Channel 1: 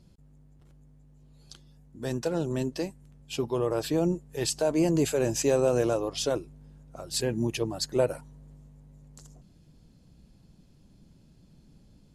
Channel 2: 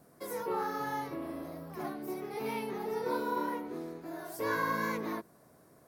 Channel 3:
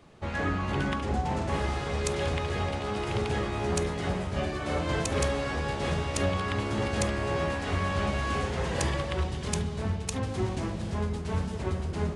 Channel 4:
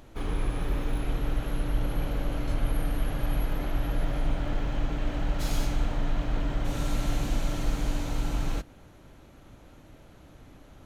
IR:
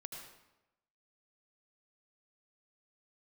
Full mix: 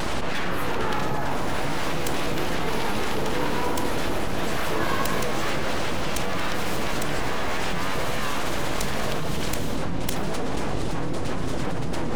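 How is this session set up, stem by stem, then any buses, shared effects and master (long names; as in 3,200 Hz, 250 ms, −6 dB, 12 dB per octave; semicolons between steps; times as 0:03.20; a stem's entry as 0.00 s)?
−14.5 dB, 0.00 s, no send, no processing
+2.0 dB, 0.30 s, no send, no processing
−2.0 dB, 0.00 s, send −4.5 dB, pitch vibrato 3.7 Hz 63 cents; full-wave rectification; envelope flattener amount 100%
−13.0 dB, 1.15 s, no send, compressing power law on the bin magnitudes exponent 0.48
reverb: on, RT60 0.95 s, pre-delay 72 ms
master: no processing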